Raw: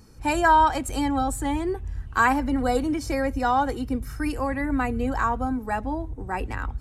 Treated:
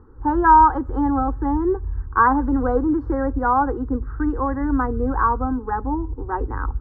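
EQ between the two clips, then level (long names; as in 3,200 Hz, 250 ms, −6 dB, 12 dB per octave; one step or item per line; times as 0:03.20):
low-pass filter 1,500 Hz 24 dB per octave
phaser with its sweep stopped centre 650 Hz, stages 6
+7.0 dB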